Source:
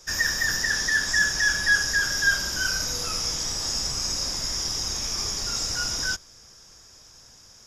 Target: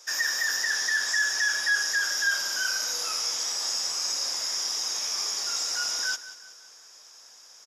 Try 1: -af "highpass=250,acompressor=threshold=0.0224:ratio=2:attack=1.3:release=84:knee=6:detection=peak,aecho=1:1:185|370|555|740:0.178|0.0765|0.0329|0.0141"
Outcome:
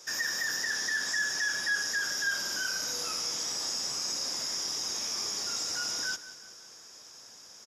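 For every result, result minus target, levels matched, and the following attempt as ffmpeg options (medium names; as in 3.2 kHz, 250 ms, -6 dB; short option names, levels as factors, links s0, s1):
250 Hz band +11.0 dB; compression: peak gain reduction +5.5 dB
-af "highpass=590,acompressor=threshold=0.0224:ratio=2:attack=1.3:release=84:knee=6:detection=peak,aecho=1:1:185|370|555|740:0.178|0.0765|0.0329|0.0141"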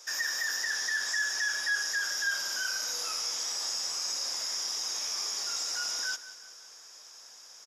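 compression: peak gain reduction +5 dB
-af "highpass=590,acompressor=threshold=0.075:ratio=2:attack=1.3:release=84:knee=6:detection=peak,aecho=1:1:185|370|555|740:0.178|0.0765|0.0329|0.0141"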